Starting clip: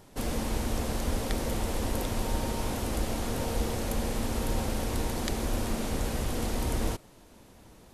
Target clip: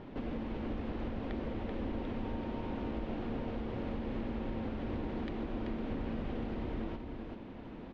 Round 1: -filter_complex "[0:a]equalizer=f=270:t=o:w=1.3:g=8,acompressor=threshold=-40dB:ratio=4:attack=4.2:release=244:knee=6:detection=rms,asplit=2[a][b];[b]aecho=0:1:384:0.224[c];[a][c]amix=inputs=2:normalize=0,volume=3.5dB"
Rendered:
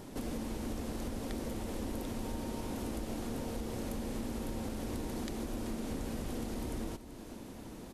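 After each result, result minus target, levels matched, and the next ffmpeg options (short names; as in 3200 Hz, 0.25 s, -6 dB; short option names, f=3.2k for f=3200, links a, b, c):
4000 Hz band +6.0 dB; echo-to-direct -7.5 dB
-filter_complex "[0:a]lowpass=f=3.1k:w=0.5412,lowpass=f=3.1k:w=1.3066,equalizer=f=270:t=o:w=1.3:g=8,acompressor=threshold=-40dB:ratio=4:attack=4.2:release=244:knee=6:detection=rms,asplit=2[a][b];[b]aecho=0:1:384:0.224[c];[a][c]amix=inputs=2:normalize=0,volume=3.5dB"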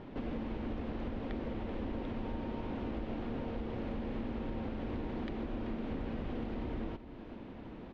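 echo-to-direct -7.5 dB
-filter_complex "[0:a]lowpass=f=3.1k:w=0.5412,lowpass=f=3.1k:w=1.3066,equalizer=f=270:t=o:w=1.3:g=8,acompressor=threshold=-40dB:ratio=4:attack=4.2:release=244:knee=6:detection=rms,asplit=2[a][b];[b]aecho=0:1:384:0.531[c];[a][c]amix=inputs=2:normalize=0,volume=3.5dB"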